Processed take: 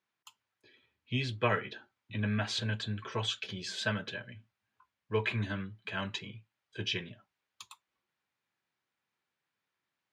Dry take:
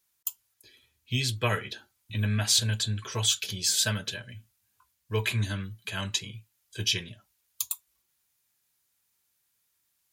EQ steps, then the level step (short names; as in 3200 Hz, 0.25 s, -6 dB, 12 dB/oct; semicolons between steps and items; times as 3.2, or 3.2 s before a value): HPF 150 Hz 12 dB/oct; LPF 2300 Hz 12 dB/oct; 0.0 dB